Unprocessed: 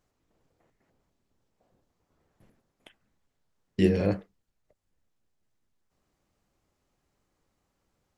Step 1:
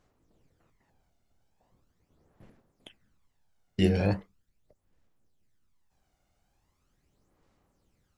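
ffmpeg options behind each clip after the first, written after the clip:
-af "aphaser=in_gain=1:out_gain=1:delay=1.4:decay=0.53:speed=0.4:type=sinusoidal"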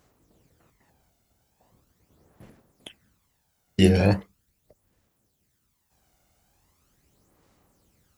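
-af "highpass=41,highshelf=f=8000:g=11.5,volume=2.11"

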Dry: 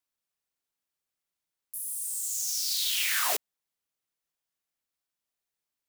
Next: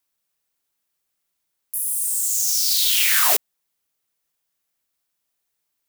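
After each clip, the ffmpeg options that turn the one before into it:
-af "highshelf=f=10000:g=6,volume=2.37"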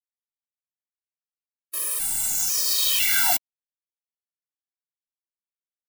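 -af "acrusher=bits=5:dc=4:mix=0:aa=0.000001,afftfilt=real='re*gt(sin(2*PI*1*pts/sr)*(1-2*mod(floor(b*sr/1024/330),2)),0)':imag='im*gt(sin(2*PI*1*pts/sr)*(1-2*mod(floor(b*sr/1024/330),2)),0)':win_size=1024:overlap=0.75"

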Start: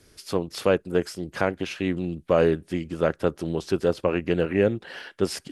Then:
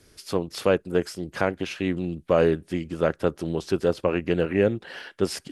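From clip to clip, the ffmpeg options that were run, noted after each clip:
-af anull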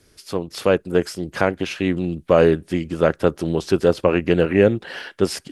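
-af "dynaudnorm=f=250:g=5:m=3.76"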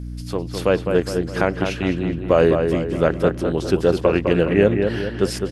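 -filter_complex "[0:a]aeval=exprs='val(0)+0.0398*(sin(2*PI*60*n/s)+sin(2*PI*2*60*n/s)/2+sin(2*PI*3*60*n/s)/3+sin(2*PI*4*60*n/s)/4+sin(2*PI*5*60*n/s)/5)':c=same,asplit=2[s0][s1];[s1]adelay=207,lowpass=f=2800:p=1,volume=0.531,asplit=2[s2][s3];[s3]adelay=207,lowpass=f=2800:p=1,volume=0.48,asplit=2[s4][s5];[s5]adelay=207,lowpass=f=2800:p=1,volume=0.48,asplit=2[s6][s7];[s7]adelay=207,lowpass=f=2800:p=1,volume=0.48,asplit=2[s8][s9];[s9]adelay=207,lowpass=f=2800:p=1,volume=0.48,asplit=2[s10][s11];[s11]adelay=207,lowpass=f=2800:p=1,volume=0.48[s12];[s0][s2][s4][s6][s8][s10][s12]amix=inputs=7:normalize=0,volume=0.891"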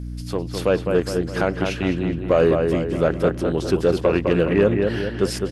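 -af "asoftclip=type=tanh:threshold=0.473"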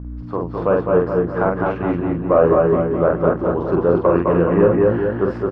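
-filter_complex "[0:a]lowpass=f=1100:t=q:w=2.6,asplit=2[s0][s1];[s1]aecho=0:1:46.65|224.5:0.708|0.631[s2];[s0][s2]amix=inputs=2:normalize=0,volume=0.891"

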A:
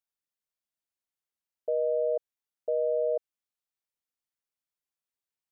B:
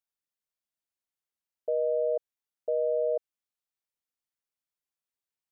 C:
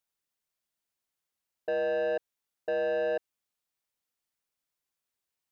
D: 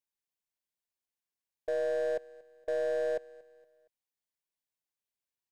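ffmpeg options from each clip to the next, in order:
-af anull
-af "asoftclip=type=tanh:threshold=0.0282,volume=1.78"
-af "aeval=exprs='0.0501*(cos(1*acos(clip(val(0)/0.0501,-1,1)))-cos(1*PI/2))+0.01*(cos(3*acos(clip(val(0)/0.0501,-1,1)))-cos(3*PI/2))+0.00158*(cos(5*acos(clip(val(0)/0.0501,-1,1)))-cos(5*PI/2))+0.00282*(cos(6*acos(clip(val(0)/0.0501,-1,1)))-cos(6*PI/2))':c=same,asuperstop=centerf=1300:order=4:qfactor=5.4,aecho=1:1:233|466|699:0.0841|0.0353|0.0148,volume=0.75"

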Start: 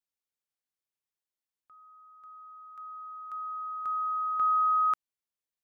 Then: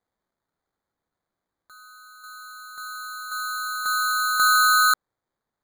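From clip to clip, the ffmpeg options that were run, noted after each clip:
-af "acrusher=samples=16:mix=1:aa=0.000001,volume=2.37"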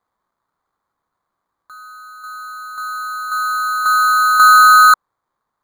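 -af "equalizer=f=1100:t=o:w=0.76:g=13,volume=1.33"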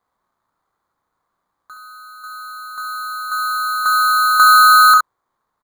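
-af "aecho=1:1:37|68:0.376|0.473,volume=1.12"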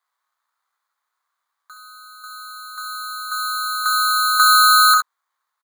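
-filter_complex "[0:a]highpass=1500,asplit=2[s0][s1];[s1]adelay=13,volume=0.266[s2];[s0][s2]amix=inputs=2:normalize=0,volume=1.19"

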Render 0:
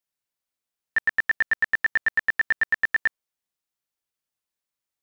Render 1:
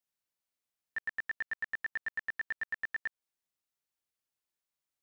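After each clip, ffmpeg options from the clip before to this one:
-af "alimiter=level_in=1.12:limit=0.0631:level=0:latency=1:release=174,volume=0.891,volume=0.668"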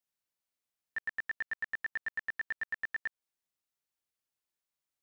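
-af anull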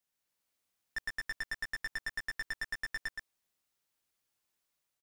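-af "dynaudnorm=f=120:g=5:m=1.41,aeval=exprs='(tanh(56.2*val(0)+0.3)-tanh(0.3))/56.2':c=same,aecho=1:1:121:0.531,volume=1.5"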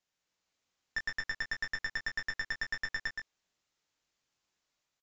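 -filter_complex "[0:a]asplit=2[s0][s1];[s1]adelay=22,volume=0.447[s2];[s0][s2]amix=inputs=2:normalize=0,aresample=16000,aresample=44100,volume=1.33"

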